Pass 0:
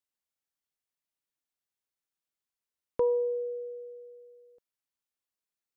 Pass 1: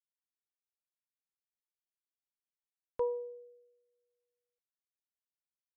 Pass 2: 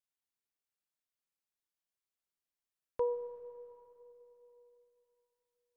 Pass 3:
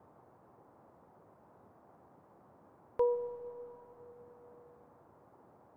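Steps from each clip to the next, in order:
parametric band 250 Hz −9.5 dB 2 octaves; expander for the loud parts 2.5 to 1, over −48 dBFS
convolution reverb RT60 3.4 s, pre-delay 5 ms, DRR 10 dB
noise in a band 78–1,000 Hz −65 dBFS; level +3 dB

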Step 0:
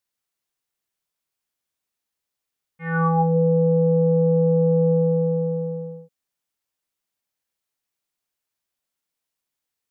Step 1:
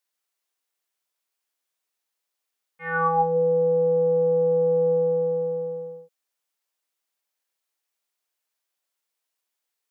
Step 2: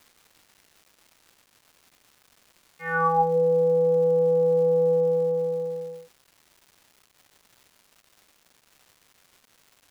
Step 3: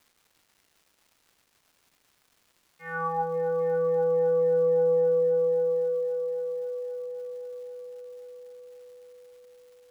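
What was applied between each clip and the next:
high-pass filter 390 Hz 12 dB per octave; level +1.5 dB
surface crackle 540 per second −45 dBFS
echo machine with several playback heads 265 ms, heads all three, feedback 63%, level −14.5 dB; level −7.5 dB

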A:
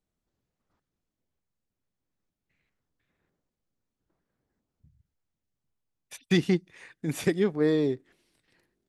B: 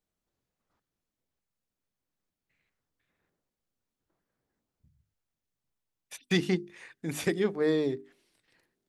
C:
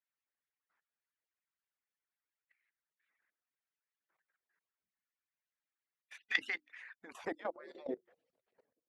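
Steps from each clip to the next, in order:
low-shelf EQ 330 Hz −4.5 dB; mains-hum notches 50/100/150/200/250/300/350/400 Hz
harmonic-percussive split with one part muted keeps percussive; band-pass filter sweep 1,800 Hz → 490 Hz, 0:06.81–0:07.65; output level in coarse steps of 16 dB; level +12 dB

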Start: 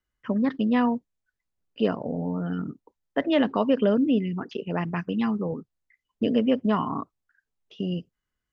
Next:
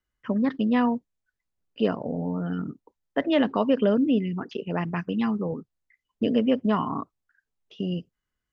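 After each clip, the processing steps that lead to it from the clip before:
no processing that can be heard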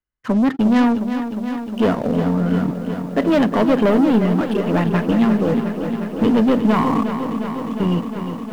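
high-shelf EQ 4,300 Hz −11.5 dB
leveller curve on the samples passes 3
feedback echo at a low word length 357 ms, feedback 80%, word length 8 bits, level −9 dB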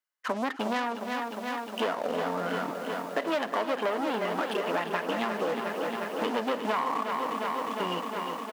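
high-pass filter 650 Hz 12 dB per octave
downward compressor 5 to 1, threshold −28 dBFS, peak gain reduction 10.5 dB
single-tap delay 309 ms −16.5 dB
level +2 dB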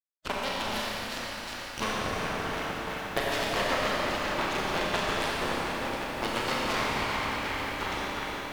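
harmonic generator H 3 −19 dB, 5 −21 dB, 7 −16 dB, 8 −17 dB, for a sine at −13 dBFS
harmonic and percussive parts rebalanced harmonic −15 dB
four-comb reverb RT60 3.6 s, combs from 29 ms, DRR −5 dB

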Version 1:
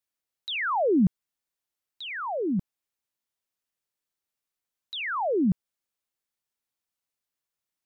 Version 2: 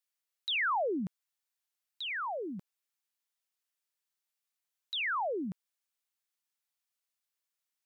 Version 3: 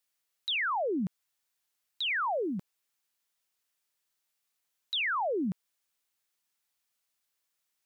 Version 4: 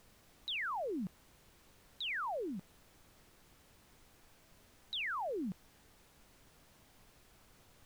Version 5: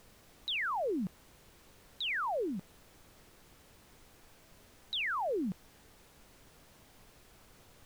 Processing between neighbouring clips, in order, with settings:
high-pass filter 1,200 Hz 6 dB per octave
brickwall limiter −33.5 dBFS, peak gain reduction 7 dB; level +6.5 dB
background noise pink −56 dBFS; level −8 dB
parametric band 460 Hz +2 dB; level +4 dB

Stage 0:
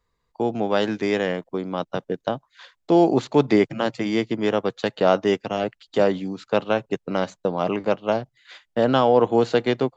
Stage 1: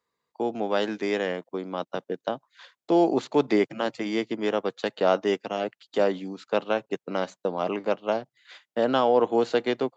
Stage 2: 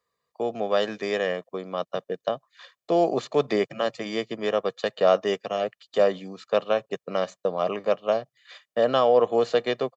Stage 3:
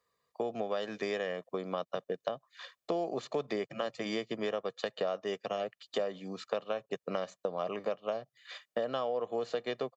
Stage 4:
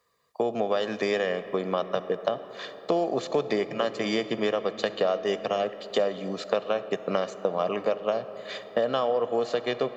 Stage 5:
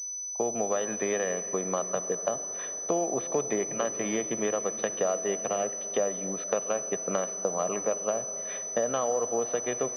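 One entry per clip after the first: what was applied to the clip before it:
high-pass filter 220 Hz 12 dB per octave; level −3.5 dB
comb filter 1.7 ms, depth 55%
downward compressor 6 to 1, threshold −31 dBFS, peak gain reduction 16.5 dB
convolution reverb RT60 4.9 s, pre-delay 5 ms, DRR 12 dB; level +8 dB
switching amplifier with a slow clock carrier 6,000 Hz; level −3 dB

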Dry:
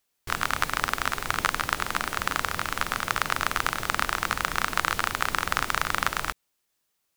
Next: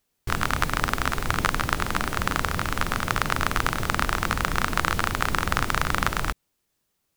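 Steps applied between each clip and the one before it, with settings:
low-shelf EQ 410 Hz +11 dB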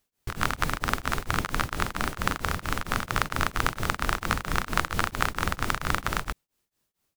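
tremolo along a rectified sine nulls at 4.4 Hz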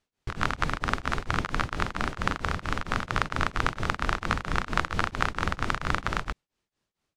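high-frequency loss of the air 85 metres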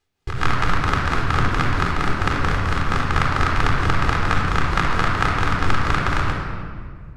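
rectangular room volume 3,500 cubic metres, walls mixed, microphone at 3.9 metres
level +2 dB

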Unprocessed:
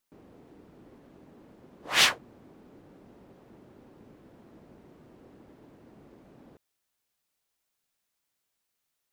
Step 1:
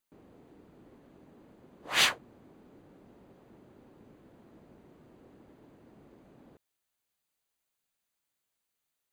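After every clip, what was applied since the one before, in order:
notch filter 5,400 Hz, Q 8.2
level −3 dB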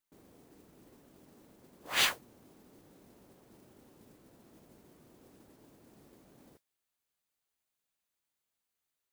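noise that follows the level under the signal 10 dB
level −3.5 dB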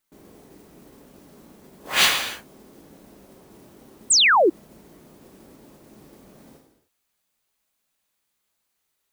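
reverb whose tail is shaped and stops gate 330 ms falling, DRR 1.5 dB
sound drawn into the spectrogram fall, 0:04.10–0:04.50, 300–9,100 Hz −24 dBFS
level +8.5 dB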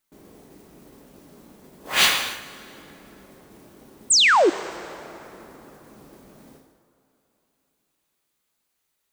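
dense smooth reverb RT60 3.7 s, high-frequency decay 0.6×, DRR 14 dB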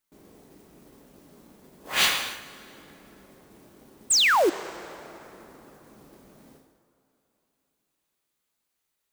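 floating-point word with a short mantissa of 2 bits
level −4 dB

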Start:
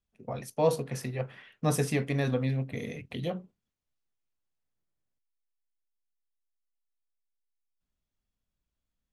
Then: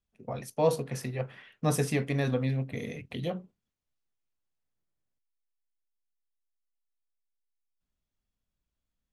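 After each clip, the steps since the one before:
no processing that can be heard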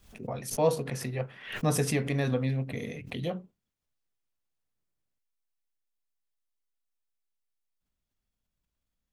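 background raised ahead of every attack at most 100 dB per second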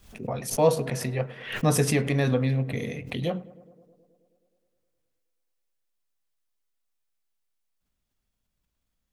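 tape delay 105 ms, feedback 82%, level −18.5 dB, low-pass 1,500 Hz
level +4.5 dB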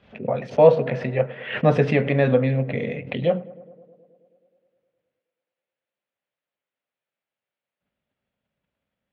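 loudspeaker in its box 130–3,000 Hz, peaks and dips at 320 Hz −4 dB, 560 Hz +7 dB, 1,100 Hz −4 dB
level +5 dB

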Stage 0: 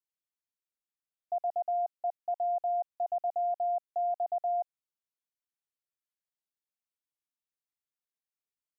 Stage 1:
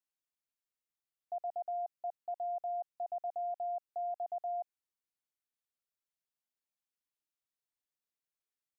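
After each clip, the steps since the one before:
brickwall limiter −30.5 dBFS, peak gain reduction 4.5 dB
level −2.5 dB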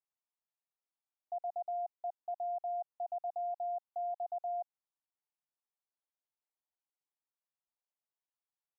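resonant band-pass 830 Hz, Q 1.9
level +1.5 dB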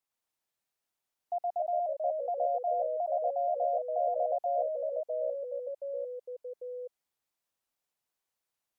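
delay with pitch and tempo change per echo 112 ms, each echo −2 semitones, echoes 3
level +5.5 dB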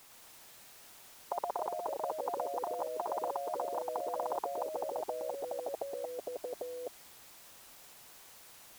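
every bin compressed towards the loudest bin 10 to 1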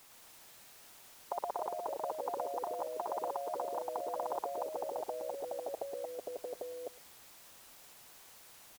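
single-tap delay 108 ms −20.5 dB
level −1.5 dB

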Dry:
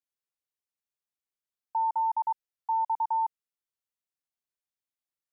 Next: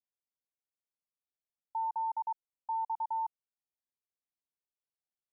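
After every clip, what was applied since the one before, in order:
low-pass filter 1,000 Hz 24 dB per octave
level −5 dB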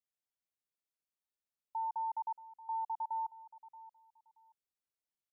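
repeating echo 628 ms, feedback 22%, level −17 dB
level −3 dB

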